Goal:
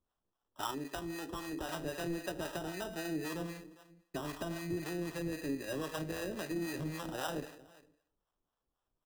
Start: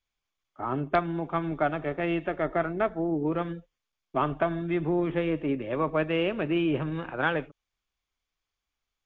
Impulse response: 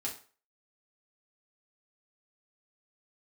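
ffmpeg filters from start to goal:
-filter_complex "[0:a]alimiter=limit=-19.5dB:level=0:latency=1:release=32,asplit=2[link_01][link_02];[1:a]atrim=start_sample=2205,asetrate=31311,aresample=44100[link_03];[link_02][link_03]afir=irnorm=-1:irlink=0,volume=-8.5dB[link_04];[link_01][link_04]amix=inputs=2:normalize=0,asoftclip=type=tanh:threshold=-17dB,asettb=1/sr,asplit=3[link_05][link_06][link_07];[link_05]atrim=end=0.714[link_08];[link_06]atrim=start=0.71:end=1.69,asetpts=PTS-STARTPTS,afade=type=in:duration=0.004:curve=qsin,afade=type=out:start_time=0.976:duration=0.004:curve=qsin,highpass=290,equalizer=frequency=640:width_type=q:width=4:gain=-10,equalizer=frequency=1000:width_type=q:width=4:gain=-5,equalizer=frequency=1500:width_type=q:width=4:gain=-8,equalizer=frequency=2200:width_type=q:width=4:gain=6,lowpass=frequency=3600:width=0.5412,lowpass=frequency=3600:width=1.3066[link_09];[link_07]atrim=start=1.686[link_10];[link_08][link_09]acrossfade=duration=0.004:curve1=hsin:curve2=qsin[link_11];[link_11][link_10]acrossfade=duration=0.004:curve1=qsin:curve2=hsin,acompressor=threshold=-33dB:ratio=3,aecho=1:1:404:0.0891,acrusher=samples=20:mix=1:aa=0.000001,acrossover=split=550[link_12][link_13];[link_12]aeval=exprs='val(0)*(1-0.7/2+0.7/2*cos(2*PI*3.8*n/s))':channel_layout=same[link_14];[link_13]aeval=exprs='val(0)*(1-0.7/2-0.7/2*cos(2*PI*3.8*n/s))':channel_layout=same[link_15];[link_14][link_15]amix=inputs=2:normalize=0,volume=-1dB"

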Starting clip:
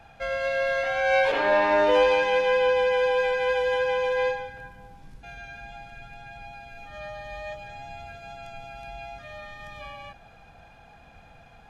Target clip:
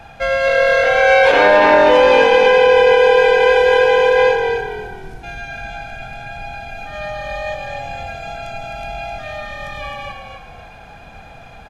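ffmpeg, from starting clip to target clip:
ffmpeg -i in.wav -filter_complex "[0:a]asplit=2[link_01][link_02];[link_02]asplit=4[link_03][link_04][link_05][link_06];[link_03]adelay=261,afreqshift=-41,volume=-6dB[link_07];[link_04]adelay=522,afreqshift=-82,volume=-16.2dB[link_08];[link_05]adelay=783,afreqshift=-123,volume=-26.3dB[link_09];[link_06]adelay=1044,afreqshift=-164,volume=-36.5dB[link_10];[link_07][link_08][link_09][link_10]amix=inputs=4:normalize=0[link_11];[link_01][link_11]amix=inputs=2:normalize=0,alimiter=level_in=12.5dB:limit=-1dB:release=50:level=0:latency=1,volume=-1dB" out.wav

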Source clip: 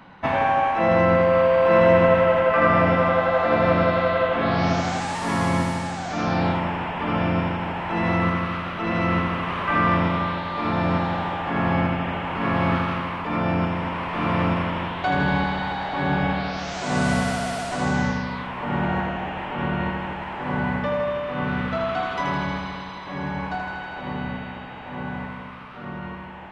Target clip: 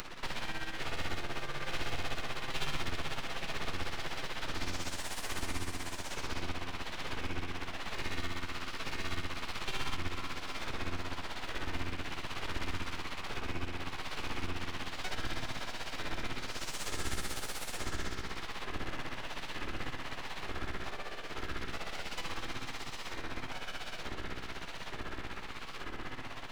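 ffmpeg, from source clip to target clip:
ffmpeg -i in.wav -filter_complex "[0:a]tremolo=f=16:d=0.65,acompressor=mode=upward:threshold=-22dB:ratio=2.5,equalizer=frequency=480:width_type=o:width=2.6:gain=-14,aeval=exprs='abs(val(0))':channel_layout=same,acrossover=split=160|3000[link_01][link_02][link_03];[link_02]acompressor=threshold=-37dB:ratio=6[link_04];[link_01][link_04][link_03]amix=inputs=3:normalize=0,volume=-1.5dB" out.wav

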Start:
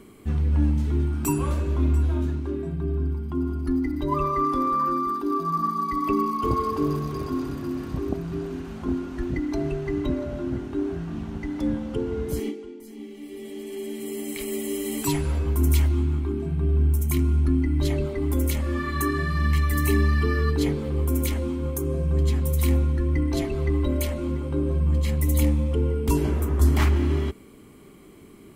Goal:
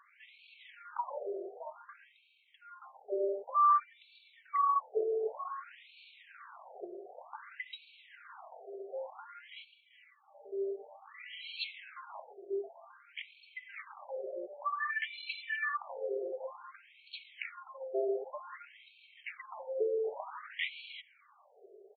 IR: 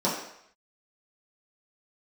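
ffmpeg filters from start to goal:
-af "atempo=1.3,afftfilt=real='re*between(b*sr/1024,510*pow(3200/510,0.5+0.5*sin(2*PI*0.54*pts/sr))/1.41,510*pow(3200/510,0.5+0.5*sin(2*PI*0.54*pts/sr))*1.41)':imag='im*between(b*sr/1024,510*pow(3200/510,0.5+0.5*sin(2*PI*0.54*pts/sr))/1.41,510*pow(3200/510,0.5+0.5*sin(2*PI*0.54*pts/sr))*1.41)':win_size=1024:overlap=0.75"

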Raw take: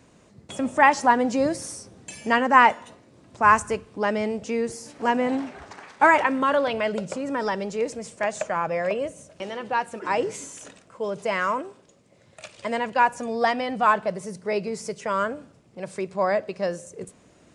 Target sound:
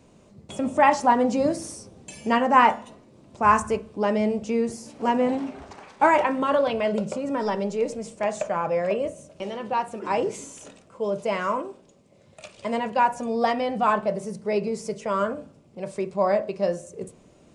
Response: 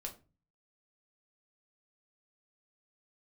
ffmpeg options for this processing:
-filter_complex "[0:a]asplit=2[link_01][link_02];[link_02]lowpass=frequency=2200:width=0.5412,lowpass=frequency=2200:width=1.3066[link_03];[1:a]atrim=start_sample=2205,lowpass=3300[link_04];[link_03][link_04]afir=irnorm=-1:irlink=0,volume=-0.5dB[link_05];[link_01][link_05]amix=inputs=2:normalize=0,volume=-2.5dB"

